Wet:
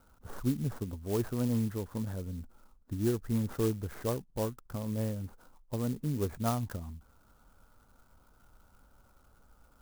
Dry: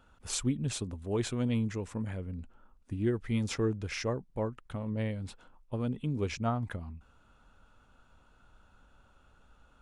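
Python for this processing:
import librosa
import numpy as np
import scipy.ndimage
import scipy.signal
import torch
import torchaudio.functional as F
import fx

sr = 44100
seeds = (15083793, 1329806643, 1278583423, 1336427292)

y = fx.tracing_dist(x, sr, depth_ms=0.12)
y = scipy.signal.sosfilt(scipy.signal.butter(6, 1600.0, 'lowpass', fs=sr, output='sos'), y)
y = fx.clock_jitter(y, sr, seeds[0], jitter_ms=0.073)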